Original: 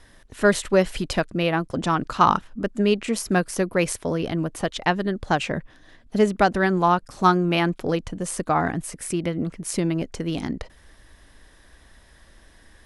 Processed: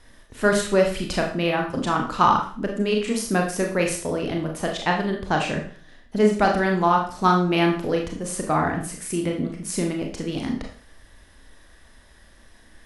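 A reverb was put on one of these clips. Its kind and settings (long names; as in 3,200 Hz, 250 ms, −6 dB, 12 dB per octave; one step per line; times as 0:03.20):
four-comb reverb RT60 0.44 s, combs from 26 ms, DRR 1 dB
level −2 dB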